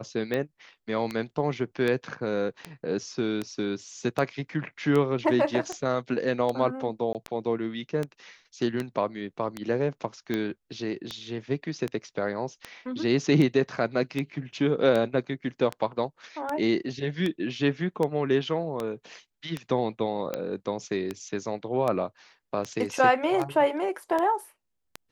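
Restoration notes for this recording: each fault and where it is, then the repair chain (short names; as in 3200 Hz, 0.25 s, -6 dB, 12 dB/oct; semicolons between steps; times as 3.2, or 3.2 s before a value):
tick 78 rpm -16 dBFS
7.13–7.15 gap 18 ms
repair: de-click; interpolate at 7.13, 18 ms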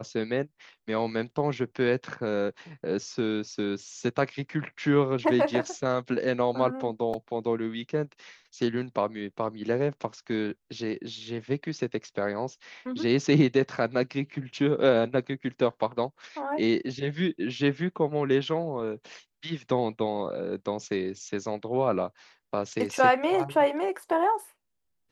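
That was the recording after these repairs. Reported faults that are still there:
none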